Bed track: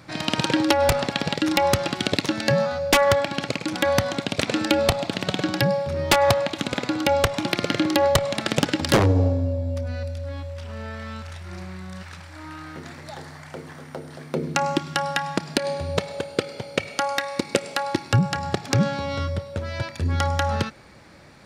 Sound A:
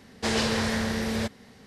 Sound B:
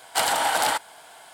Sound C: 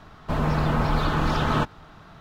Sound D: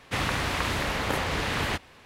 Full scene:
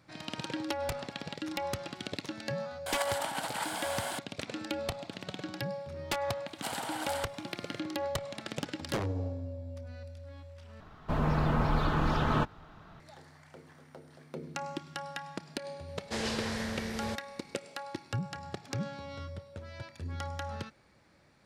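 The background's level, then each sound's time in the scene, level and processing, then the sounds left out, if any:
bed track -15.5 dB
2.86 s: add B -0.5 dB + compressor with a negative ratio -31 dBFS, ratio -0.5
6.47 s: add B -15.5 dB
10.80 s: replace with C -5 dB + treble shelf 3.2 kHz -5 dB
15.88 s: add A -8.5 dB
not used: D

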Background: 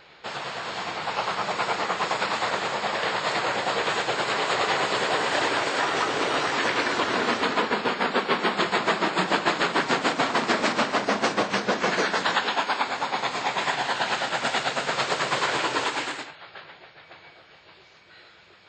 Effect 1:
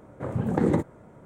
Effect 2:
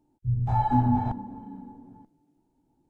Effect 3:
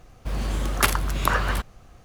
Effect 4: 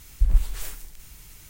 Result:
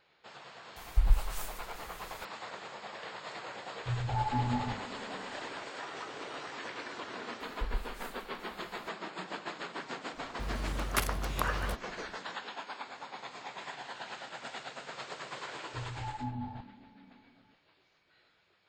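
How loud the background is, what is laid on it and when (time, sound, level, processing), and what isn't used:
background -17.5 dB
0.76 s: add 4 -5.5 dB
3.61 s: add 2 -8 dB + hum notches 50/100/150/200/250/300/350 Hz
7.40 s: add 4 -16 dB
10.14 s: add 3 -10 dB
15.49 s: add 2 -16 dB
not used: 1

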